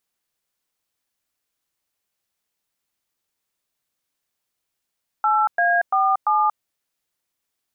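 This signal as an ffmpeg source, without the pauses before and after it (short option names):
-f lavfi -i "aevalsrc='0.126*clip(min(mod(t,0.342),0.233-mod(t,0.342))/0.002,0,1)*(eq(floor(t/0.342),0)*(sin(2*PI*852*mod(t,0.342))+sin(2*PI*1336*mod(t,0.342)))+eq(floor(t/0.342),1)*(sin(2*PI*697*mod(t,0.342))+sin(2*PI*1633*mod(t,0.342)))+eq(floor(t/0.342),2)*(sin(2*PI*770*mod(t,0.342))+sin(2*PI*1209*mod(t,0.342)))+eq(floor(t/0.342),3)*(sin(2*PI*852*mod(t,0.342))+sin(2*PI*1209*mod(t,0.342))))':d=1.368:s=44100"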